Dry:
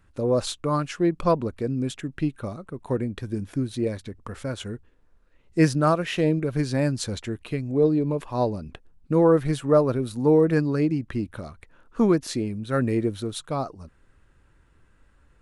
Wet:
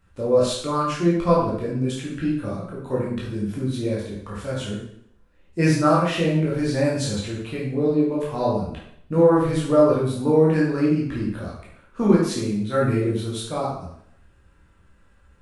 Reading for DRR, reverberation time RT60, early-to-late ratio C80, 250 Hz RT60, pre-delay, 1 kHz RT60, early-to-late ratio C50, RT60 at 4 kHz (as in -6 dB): -6.0 dB, 0.65 s, 5.5 dB, 0.70 s, 6 ms, 0.65 s, 2.0 dB, 0.65 s